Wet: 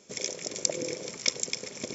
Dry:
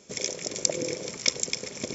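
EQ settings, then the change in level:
low-shelf EQ 77 Hz −9.5 dB
−2.5 dB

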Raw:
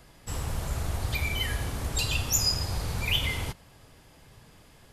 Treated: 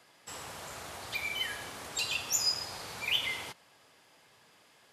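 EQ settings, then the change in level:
meter weighting curve A
−3.5 dB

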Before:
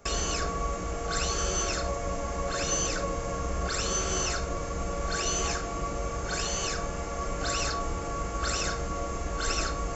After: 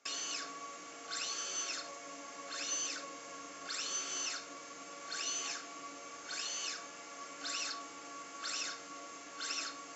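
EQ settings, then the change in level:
band-pass filter 120–4,000 Hz
first difference
parametric band 280 Hz +15 dB 0.29 octaves
+3.0 dB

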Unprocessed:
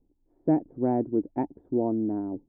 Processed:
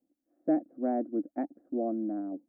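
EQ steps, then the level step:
high-pass filter 280 Hz 12 dB per octave
phaser with its sweep stopped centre 620 Hz, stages 8
0.0 dB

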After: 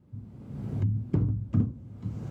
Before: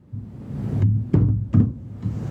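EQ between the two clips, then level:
notch filter 1,800 Hz, Q 12
−8.5 dB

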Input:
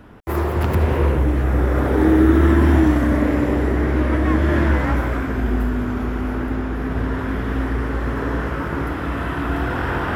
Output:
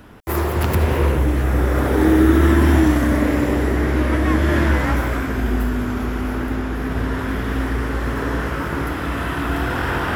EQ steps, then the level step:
high-shelf EQ 3,200 Hz +10 dB
0.0 dB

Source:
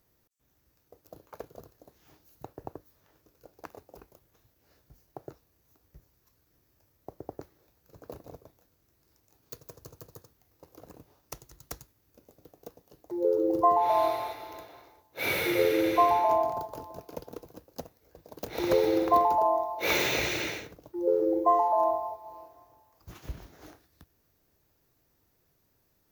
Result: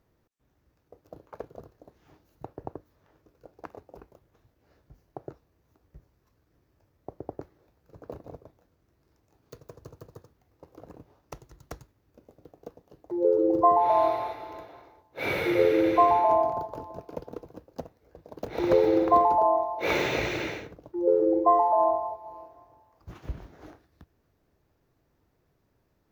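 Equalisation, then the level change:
low-pass filter 1,600 Hz 6 dB per octave
+3.5 dB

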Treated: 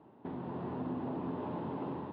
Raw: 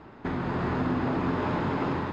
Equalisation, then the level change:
band-pass filter 140–5,300 Hz
high-frequency loss of the air 370 metres
flat-topped bell 1,700 Hz −9.5 dB 1.2 octaves
−8.5 dB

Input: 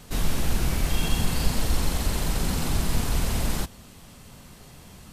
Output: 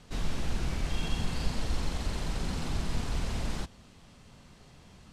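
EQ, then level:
low-pass filter 6,300 Hz 12 dB per octave
−7.0 dB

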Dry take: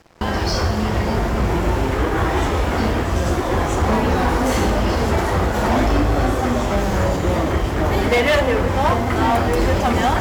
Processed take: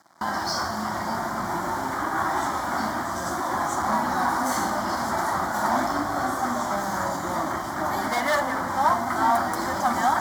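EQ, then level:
high-pass filter 300 Hz 12 dB per octave
phaser with its sweep stopped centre 1,100 Hz, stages 4
0.0 dB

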